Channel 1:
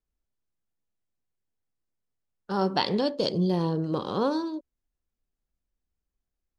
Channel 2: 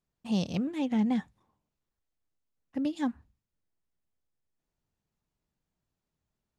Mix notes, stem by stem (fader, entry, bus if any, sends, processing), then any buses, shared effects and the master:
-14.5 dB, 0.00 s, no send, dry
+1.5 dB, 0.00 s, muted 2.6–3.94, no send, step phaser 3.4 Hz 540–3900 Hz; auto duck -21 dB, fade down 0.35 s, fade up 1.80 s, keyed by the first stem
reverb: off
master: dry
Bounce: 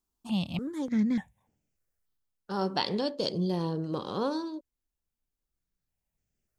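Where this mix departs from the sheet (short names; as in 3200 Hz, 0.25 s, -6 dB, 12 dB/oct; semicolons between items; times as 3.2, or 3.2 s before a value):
stem 1 -14.5 dB -> -4.5 dB; master: extra high shelf 5200 Hz +6 dB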